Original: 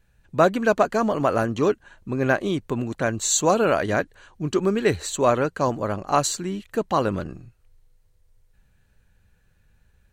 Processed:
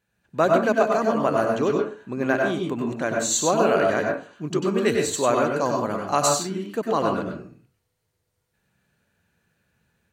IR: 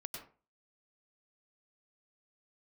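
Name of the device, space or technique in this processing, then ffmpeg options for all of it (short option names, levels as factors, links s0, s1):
far laptop microphone: -filter_complex "[1:a]atrim=start_sample=2205[s0];[0:a][s0]afir=irnorm=-1:irlink=0,highpass=150,dynaudnorm=f=180:g=3:m=1.58,asettb=1/sr,asplit=3[s1][s2][s3];[s1]atrim=end=4.784[s4];[s2]atrim=start=4.78:end=6.43,asetpts=PTS-STARTPTS,afade=t=in:d=0.004:c=qsin,afade=t=out:st=1.646:d=0.004:c=qsin,highshelf=f=4300:g=5.5[s5];[s3]atrim=start=6.426[s6];[s4][s5]acrossfade=d=0.004:c1=hsin:c2=qsin[s7];[s7][s6]acrossfade=d=0.004:c1=qsin:c2=hsin,volume=0.841"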